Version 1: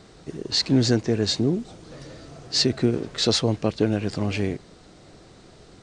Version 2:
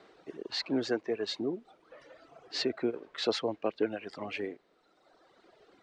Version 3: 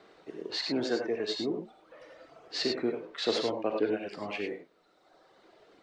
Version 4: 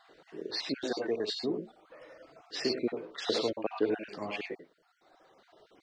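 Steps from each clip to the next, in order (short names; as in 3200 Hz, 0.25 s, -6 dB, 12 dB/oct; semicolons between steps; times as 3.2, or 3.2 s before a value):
reverb removal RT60 1.7 s; three-band isolator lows -23 dB, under 290 Hz, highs -17 dB, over 3500 Hz; gain -4 dB
non-linear reverb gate 0.12 s rising, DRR 2.5 dB
random spectral dropouts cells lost 26%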